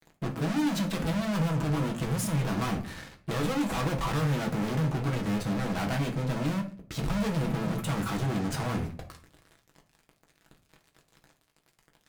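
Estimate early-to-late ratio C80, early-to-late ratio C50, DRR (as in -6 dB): 16.5 dB, 12.0 dB, 1.5 dB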